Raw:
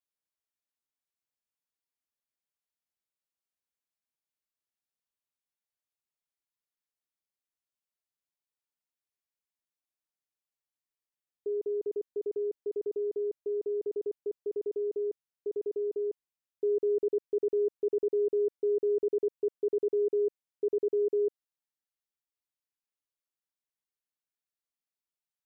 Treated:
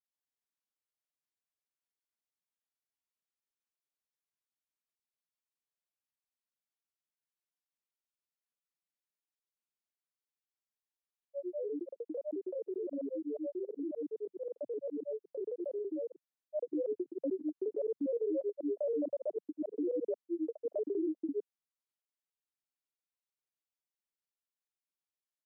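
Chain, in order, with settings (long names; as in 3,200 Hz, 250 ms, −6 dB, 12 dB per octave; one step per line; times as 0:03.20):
Butterworth high-pass 170 Hz 48 dB per octave
granular cloud 100 ms, grains 21 per second, spray 229 ms, pitch spread up and down by 7 semitones
level −4.5 dB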